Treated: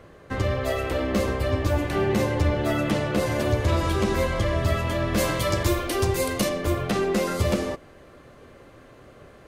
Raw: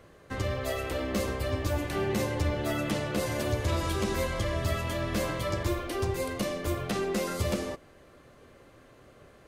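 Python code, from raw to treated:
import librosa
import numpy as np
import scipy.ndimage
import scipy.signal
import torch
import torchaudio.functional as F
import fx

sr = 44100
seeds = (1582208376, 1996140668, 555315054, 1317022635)

y = fx.high_shelf(x, sr, hz=3800.0, db=fx.steps((0.0, -7.0), (5.17, 5.0), (6.48, -4.5)))
y = y * 10.0 ** (6.5 / 20.0)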